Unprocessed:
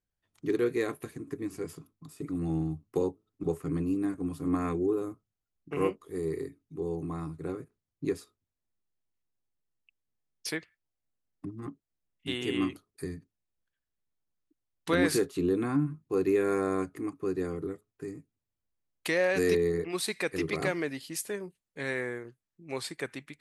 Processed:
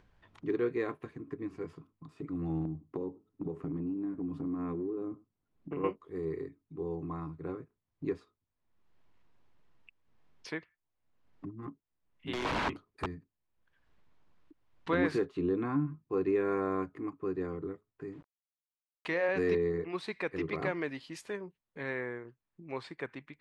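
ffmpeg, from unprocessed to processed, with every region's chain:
ffmpeg -i in.wav -filter_complex "[0:a]asettb=1/sr,asplit=3[link_01][link_02][link_03];[link_01]atrim=end=2.654[link_04];[link_02]atrim=start=2.65:end=5.84,asetpts=PTS-STARTPTS,afade=type=in:duration=0.004:curve=qsin,afade=type=out:start_time=3.186:duration=0.004:curve=qsin,equalizer=frequency=250:width_type=o:width=2:gain=11,acompressor=threshold=-30dB:ratio=6:attack=3.2:release=140:knee=1:detection=peak,aecho=1:1:100:0.0708,atrim=end_sample=140679[link_05];[link_03]atrim=start=5.836[link_06];[link_04][link_05]acrossfade=duration=0.004:curve1=hsin:curve2=qsin[link_07];[link_07][link_06]acrossfade=duration=0.004:curve1=qsin:curve2=hsin,asettb=1/sr,asplit=3[link_08][link_09][link_10];[link_08]atrim=end=12.334[link_11];[link_09]atrim=start=12.33:end=13.06,asetpts=PTS-STARTPTS,afade=type=in:duration=0.004:curve=qsin,afade=type=out:start_time=0.726:duration=0.004:curve=qsin,acontrast=85,aeval=exprs='(mod(13.3*val(0)+1,2)-1)/13.3':channel_layout=same[link_12];[link_10]atrim=start=13.056[link_13];[link_11][link_12]acrossfade=duration=0.004:curve1=hsin:curve2=qsin[link_14];[link_14][link_13]acrossfade=duration=0.004:curve1=qsin:curve2=hsin,asettb=1/sr,asplit=3[link_15][link_16][link_17];[link_15]atrim=end=18.124[link_18];[link_16]atrim=start=18.12:end=19.29,asetpts=PTS-STARTPTS,afade=type=in:duration=0.004:curve=qsin,afade=type=out:start_time=1.166:duration=0.004:curve=qsin,bandreject=frequency=60:width_type=h:width=6,bandreject=frequency=120:width_type=h:width=6,bandreject=frequency=180:width_type=h:width=6,bandreject=frequency=240:width_type=h:width=6,bandreject=frequency=300:width_type=h:width=6,bandreject=frequency=360:width_type=h:width=6,bandreject=frequency=420:width_type=h:width=6,bandreject=frequency=480:width_type=h:width=6,bandreject=frequency=540:width_type=h:width=6,bandreject=frequency=600:width_type=h:width=6,aeval=exprs='val(0)*gte(abs(val(0)),0.00224)':channel_layout=same[link_19];[link_17]atrim=start=19.286[link_20];[link_18][link_19]acrossfade=duration=0.004:curve1=hsin:curve2=qsin[link_21];[link_21][link_20]acrossfade=duration=0.004:curve1=qsin:curve2=hsin,asettb=1/sr,asplit=3[link_22][link_23][link_24];[link_22]atrim=end=20.814[link_25];[link_23]atrim=start=20.81:end=21.37,asetpts=PTS-STARTPTS,afade=type=in:duration=0.004:curve=qsin,afade=type=out:start_time=0.556:duration=0.004:curve=qsin,highshelf=frequency=3100:gain=8.5,aeval=exprs='val(0)*gte(abs(val(0)),0.00251)':channel_layout=same[link_26];[link_24]atrim=start=21.366[link_27];[link_25][link_26]acrossfade=duration=0.004:curve1=hsin:curve2=qsin[link_28];[link_28][link_27]acrossfade=duration=0.004:curve1=qsin:curve2=hsin,lowpass=2700,equalizer=frequency=1000:width=3.9:gain=5.5,acompressor=mode=upward:threshold=-41dB:ratio=2.5,volume=-3.5dB" out.wav

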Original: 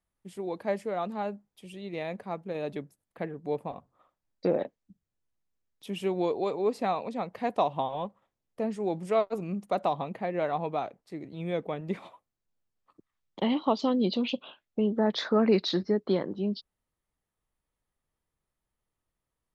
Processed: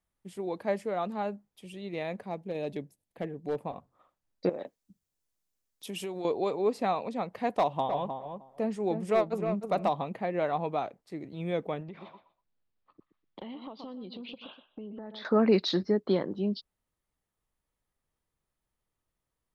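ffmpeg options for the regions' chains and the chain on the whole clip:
ffmpeg -i in.wav -filter_complex "[0:a]asettb=1/sr,asplit=3[link_01][link_02][link_03];[link_01]atrim=end=2.264[link_04];[link_02]atrim=start=2.26:end=3.57,asetpts=PTS-STARTPTS,afade=type=in:duration=0.004:curve=qsin,afade=type=out:start_time=1.306:duration=0.004:curve=qsin,equalizer=frequency=1300:width_type=o:width=0.6:gain=-11.5,volume=25dB,asoftclip=hard,volume=-25dB[link_05];[link_03]atrim=start=3.566[link_06];[link_04][link_05]acrossfade=duration=0.004:curve1=hsin:curve2=qsin[link_07];[link_07][link_06]acrossfade=duration=0.004:curve1=qsin:curve2=hsin,asettb=1/sr,asplit=3[link_08][link_09][link_10];[link_08]atrim=end=4.494[link_11];[link_09]atrim=start=4.49:end=6.25,asetpts=PTS-STARTPTS,afade=type=in:duration=0.004:curve=qsin,afade=type=out:start_time=1.756:duration=0.004:curve=qsin,bass=frequency=250:gain=-4,treble=frequency=4000:gain=8,acompressor=threshold=-32dB:ratio=10:attack=3.2:release=140:knee=1:detection=peak[link_12];[link_10]atrim=start=6.246[link_13];[link_11][link_12]acrossfade=duration=0.004:curve1=hsin:curve2=qsin[link_14];[link_14][link_13]acrossfade=duration=0.004:curve1=qsin:curve2=hsin,asettb=1/sr,asplit=3[link_15][link_16][link_17];[link_15]atrim=end=7.584[link_18];[link_16]atrim=start=7.58:end=9.89,asetpts=PTS-STARTPTS,afade=type=in:duration=0.004:curve=qsin,afade=type=out:start_time=2.306:duration=0.004:curve=qsin,asoftclip=type=hard:threshold=-18dB,asplit=2[link_19][link_20];[link_20]adelay=309,lowpass=frequency=1400:poles=1,volume=-6dB,asplit=2[link_21][link_22];[link_22]adelay=309,lowpass=frequency=1400:poles=1,volume=0.15,asplit=2[link_23][link_24];[link_24]adelay=309,lowpass=frequency=1400:poles=1,volume=0.15[link_25];[link_19][link_21][link_23][link_25]amix=inputs=4:normalize=0,atrim=end_sample=101871[link_26];[link_17]atrim=start=9.886[link_27];[link_18][link_26]acrossfade=duration=0.004:curve1=hsin:curve2=qsin[link_28];[link_28][link_27]acrossfade=duration=0.004:curve1=qsin:curve2=hsin,asettb=1/sr,asplit=3[link_29][link_30][link_31];[link_29]atrim=end=11.824[link_32];[link_30]atrim=start=11.82:end=15.25,asetpts=PTS-STARTPTS,afade=type=in:duration=0.004:curve=qsin,afade=type=out:start_time=3.426:duration=0.004:curve=qsin,lowpass=frequency=4400:width=0.5412,lowpass=frequency=4400:width=1.3066,aecho=1:1:123|246:0.2|0.0439,atrim=end_sample=151263,acompressor=threshold=-39dB:ratio=10:attack=3.2:release=140:knee=1:detection=peak[link_33];[link_31]atrim=start=15.246[link_34];[link_32][link_33]acrossfade=duration=0.004:curve1=hsin:curve2=qsin[link_35];[link_35][link_34]acrossfade=duration=0.004:curve1=qsin:curve2=hsin" out.wav

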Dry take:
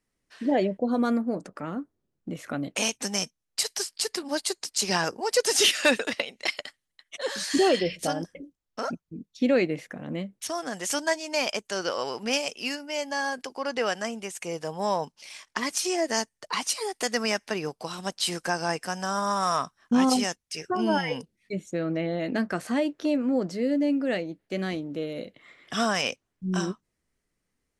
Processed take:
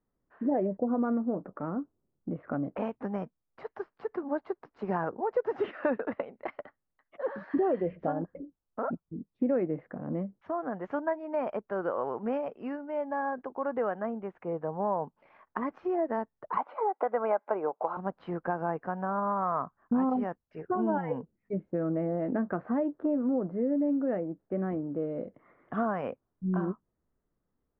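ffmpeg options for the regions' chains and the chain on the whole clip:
ffmpeg -i in.wav -filter_complex "[0:a]asettb=1/sr,asplit=3[link_01][link_02][link_03];[link_01]atrim=end=16.574[link_04];[link_02]atrim=start=16.57:end=17.97,asetpts=PTS-STARTPTS,afade=type=in:duration=0.004:curve=qsin,afade=type=out:start_time=1.396:duration=0.004:curve=qsin,acontrast=28,asuperstop=centerf=1800:order=4:qfactor=8,highpass=460,equalizer=frequency=580:width_type=q:width=4:gain=6,equalizer=frequency=850:width_type=q:width=4:gain=6,equalizer=frequency=2800:width_type=q:width=4:gain=-6,lowpass=frequency=3400:width=0.5412,lowpass=frequency=3400:width=1.3066[link_05];[link_03]atrim=start=17.966[link_06];[link_04][link_05]acrossfade=duration=0.004:curve1=hsin:curve2=qsin[link_07];[link_07][link_06]acrossfade=duration=0.004:curve1=qsin:curve2=hsin,asettb=1/sr,asplit=3[link_08][link_09][link_10];[link_08]atrim=end=22.964[link_11];[link_09]atrim=start=22.96:end=25,asetpts=PTS-STARTPTS,afade=type=in:duration=0.004:curve=qsin,afade=type=out:start_time=2.036:duration=0.004:curve=qsin,lowpass=frequency=2700:poles=1,acrusher=bits=8:mode=log:mix=0:aa=0.000001[link_12];[link_10]atrim=start=24.996[link_13];[link_11][link_12]acrossfade=duration=0.004:curve1=hsin:curve2=qsin[link_14];[link_14][link_13]acrossfade=duration=0.004:curve1=qsin:curve2=hsin,lowpass=frequency=1300:width=0.5412,lowpass=frequency=1300:width=1.3066,acompressor=threshold=-26dB:ratio=2.5" out.wav

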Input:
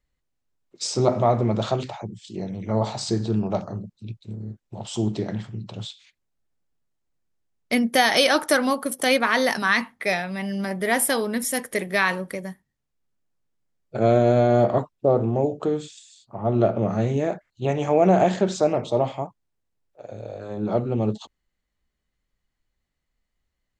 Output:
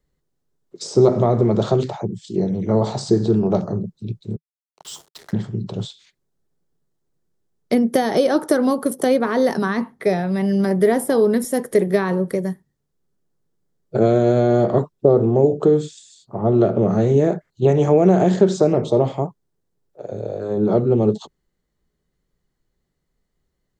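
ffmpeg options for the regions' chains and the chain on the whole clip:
ffmpeg -i in.wav -filter_complex "[0:a]asettb=1/sr,asplit=3[link_01][link_02][link_03];[link_01]atrim=end=4.364[link_04];[link_02]atrim=start=4.36:end=5.33,asetpts=PTS-STARTPTS,afade=type=in:duration=0.004:curve=qsin,afade=type=out:start_time=0.966:duration=0.004:curve=qsin,highpass=frequency=1100:width=0.5412,highpass=frequency=1100:width=1.3066,acrusher=bits=6:mix=0:aa=0.5[link_05];[link_03]atrim=start=5.326[link_06];[link_04][link_05]acrossfade=duration=0.004:curve1=hsin:curve2=qsin[link_07];[link_07][link_06]acrossfade=duration=0.004:curve1=qsin:curve2=hsin,acrossover=split=490|1200[link_08][link_09][link_10];[link_08]acompressor=threshold=-23dB:ratio=4[link_11];[link_09]acompressor=threshold=-29dB:ratio=4[link_12];[link_10]acompressor=threshold=-34dB:ratio=4[link_13];[link_11][link_12][link_13]amix=inputs=3:normalize=0,equalizer=frequency=160:width_type=o:width=0.67:gain=9,equalizer=frequency=400:width_type=o:width=0.67:gain=10,equalizer=frequency=2500:width_type=o:width=0.67:gain=-7,volume=3.5dB" out.wav

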